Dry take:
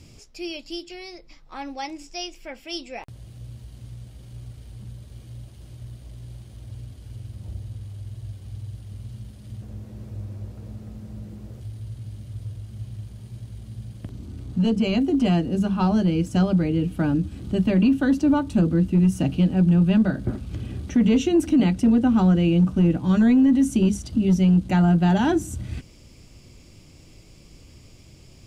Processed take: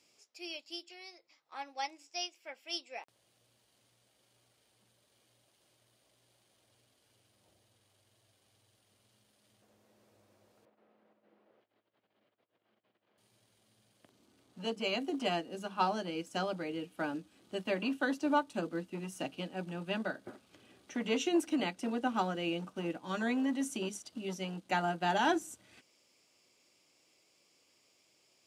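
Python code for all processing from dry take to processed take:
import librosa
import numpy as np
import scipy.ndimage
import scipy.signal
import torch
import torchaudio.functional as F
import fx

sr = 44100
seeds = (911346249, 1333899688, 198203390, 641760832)

y = fx.chain(x, sr, fx.over_compress(threshold_db=-37.0, ratio=-0.5),
    fx.bandpass_edges(low_hz=260.0, high_hz=2500.0),
    fx.air_absorb(metres=140.0), at=(10.65, 13.18))
y = scipy.signal.sosfilt(scipy.signal.butter(2, 550.0, 'highpass', fs=sr, output='sos'), y)
y = fx.upward_expand(y, sr, threshold_db=-48.0, expansion=1.5)
y = y * 10.0 ** (-1.0 / 20.0)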